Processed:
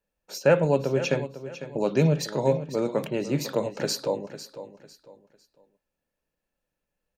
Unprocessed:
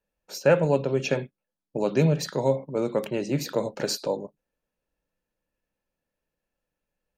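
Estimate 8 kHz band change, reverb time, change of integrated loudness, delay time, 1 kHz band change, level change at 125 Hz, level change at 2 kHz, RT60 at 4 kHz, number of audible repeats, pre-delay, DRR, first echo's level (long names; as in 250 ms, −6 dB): 0.0 dB, no reverb audible, 0.0 dB, 501 ms, 0.0 dB, +0.5 dB, 0.0 dB, no reverb audible, 3, no reverb audible, no reverb audible, −13.0 dB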